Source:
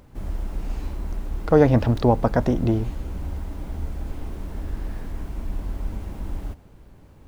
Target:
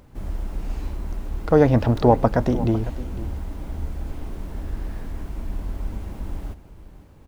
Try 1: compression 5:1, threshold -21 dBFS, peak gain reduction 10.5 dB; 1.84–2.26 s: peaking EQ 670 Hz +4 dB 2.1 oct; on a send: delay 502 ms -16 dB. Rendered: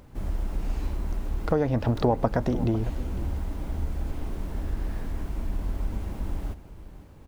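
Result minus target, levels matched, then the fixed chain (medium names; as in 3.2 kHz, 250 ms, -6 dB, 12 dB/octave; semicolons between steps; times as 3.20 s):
compression: peak gain reduction +10.5 dB
1.84–2.26 s: peaking EQ 670 Hz +4 dB 2.1 oct; on a send: delay 502 ms -16 dB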